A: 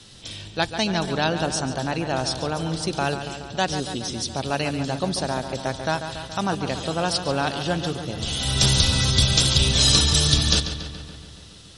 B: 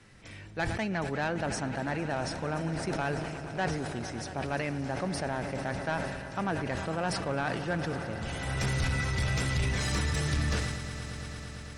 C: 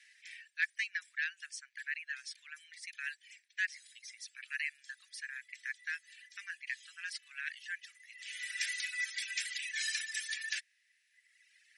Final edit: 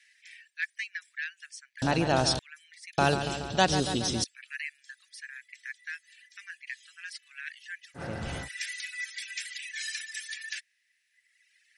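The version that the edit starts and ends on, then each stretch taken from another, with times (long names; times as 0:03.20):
C
0:01.82–0:02.39: punch in from A
0:02.98–0:04.24: punch in from A
0:07.99–0:08.44: punch in from B, crossfade 0.10 s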